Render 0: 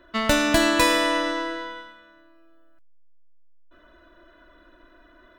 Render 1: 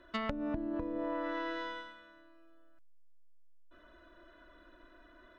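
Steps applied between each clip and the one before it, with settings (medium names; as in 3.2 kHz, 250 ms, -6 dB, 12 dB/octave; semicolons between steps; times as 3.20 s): low-pass that closes with the level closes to 320 Hz, closed at -15.5 dBFS; compression 4:1, threshold -28 dBFS, peak gain reduction 9.5 dB; trim -5.5 dB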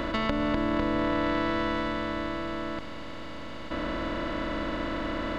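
spectral levelling over time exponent 0.2; trim +4.5 dB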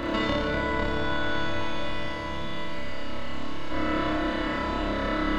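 flutter echo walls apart 5 m, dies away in 1.4 s; trim -1.5 dB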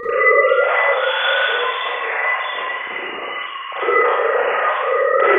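formants replaced by sine waves; wow and flutter 26 cents; Schroeder reverb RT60 0.98 s, combs from 31 ms, DRR -8.5 dB; trim -1 dB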